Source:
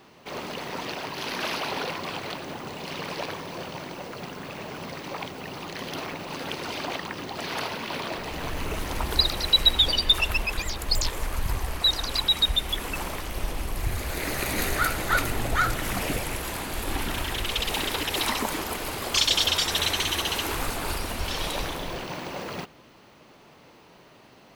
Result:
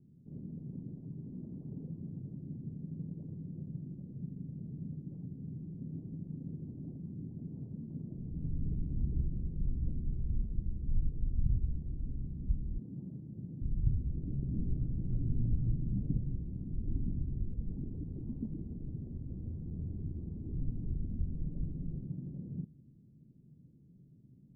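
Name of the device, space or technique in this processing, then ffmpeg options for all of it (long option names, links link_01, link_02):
the neighbour's flat through the wall: -filter_complex "[0:a]lowpass=frequency=240:width=0.5412,lowpass=frequency=240:width=1.3066,equalizer=frequency=140:width_type=o:width=0.71:gain=7.5,asettb=1/sr,asplit=3[link_01][link_02][link_03];[link_01]atrim=end=12.784[link_04];[link_02]atrim=start=12.78:end=13.62,asetpts=PTS-STARTPTS,afade=type=in:duration=0.004:curve=qsin,afade=type=out:start_time=0.836:duration=0.004:curve=qsin,highpass=frequency=120:width=0.5412,highpass=frequency=120:width=1.3066[link_05];[link_03]atrim=start=13.616[link_06];[link_04][link_05]acrossfade=duration=0.004:curve1=hsin:curve2=qsin[link_07];[link_07][link_06]acrossfade=duration=0.004:curve1=qsin:curve2=hsin,volume=-3dB"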